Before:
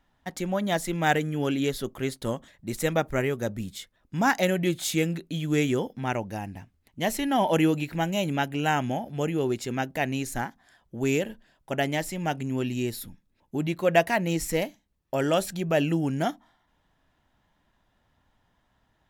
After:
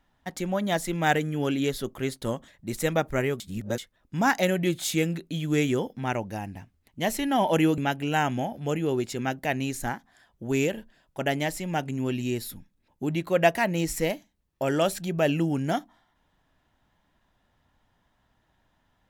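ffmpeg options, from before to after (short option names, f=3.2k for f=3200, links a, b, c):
-filter_complex "[0:a]asplit=4[a][b][c][d];[a]atrim=end=3.402[e];[b]atrim=start=3.398:end=3.782,asetpts=PTS-STARTPTS,areverse[f];[c]atrim=start=3.778:end=7.782[g];[d]atrim=start=8.298[h];[e][f]acrossfade=d=0.004:c1=hsin:c2=hsin[i];[i][g]acrossfade=d=0.004:c1=hsin:c2=hsin[j];[j][h]acrossfade=d=0.004:c1=hsin:c2=hsin"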